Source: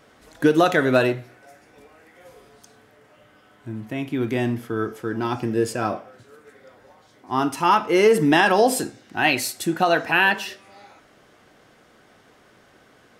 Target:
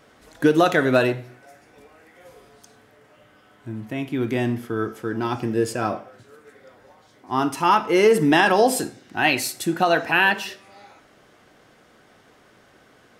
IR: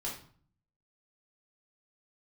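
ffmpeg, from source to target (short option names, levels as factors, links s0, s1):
-filter_complex "[0:a]asplit=2[s0][s1];[1:a]atrim=start_sample=2205,adelay=53[s2];[s1][s2]afir=irnorm=-1:irlink=0,volume=0.075[s3];[s0][s3]amix=inputs=2:normalize=0"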